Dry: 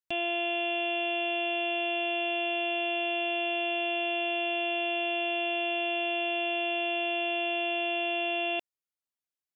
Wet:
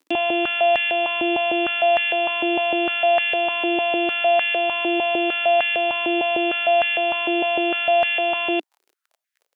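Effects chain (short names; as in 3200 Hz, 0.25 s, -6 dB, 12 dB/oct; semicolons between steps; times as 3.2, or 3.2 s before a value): crackle 26/s -52 dBFS; stepped high-pass 6.6 Hz 300–1800 Hz; gain +6.5 dB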